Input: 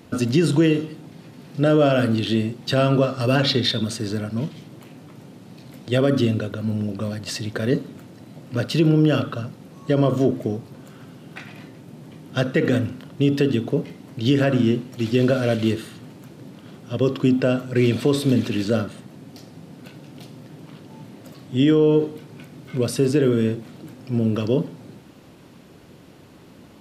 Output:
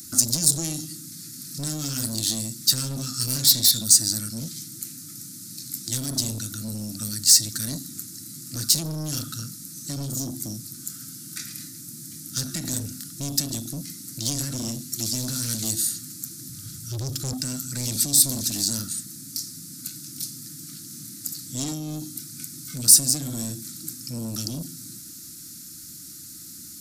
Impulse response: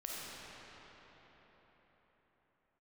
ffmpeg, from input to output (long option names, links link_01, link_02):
-filter_complex "[0:a]asettb=1/sr,asplit=3[link_01][link_02][link_03];[link_01]atrim=end=16.494[link_04];[link_02]atrim=start=16.49:end=17.33,asetpts=PTS-STARTPTS,afade=type=in:duration=0.004:curve=qsin,afade=type=out:start_time=0.836:duration=0.004:curve=qsin,lowshelf=frequency=150:width_type=q:width=1.5:gain=12[link_05];[link_03]atrim=start=17.326[link_06];[link_04][link_05]acrossfade=duration=0.004:curve1=hsin:curve2=qsin[link_07];[link_07][link_06]acrossfade=duration=0.004:curve1=qsin:curve2=hsin,afftfilt=real='re*(1-between(b*sr/4096,350,1200))':imag='im*(1-between(b*sr/4096,350,1200))':win_size=4096:overlap=0.75,acrossover=split=260|3000[link_08][link_09][link_10];[link_09]acompressor=threshold=-33dB:ratio=6[link_11];[link_08][link_11][link_10]amix=inputs=3:normalize=0,asoftclip=type=tanh:threshold=-24dB,aexciter=amount=11.1:drive=9.1:freq=4600,volume=-4dB"